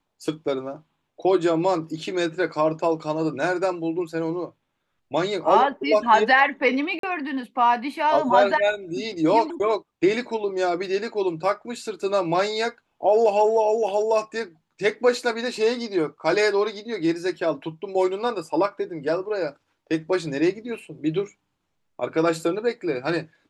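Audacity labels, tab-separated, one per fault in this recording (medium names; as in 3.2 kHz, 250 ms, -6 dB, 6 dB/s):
6.990000	7.030000	dropout 43 ms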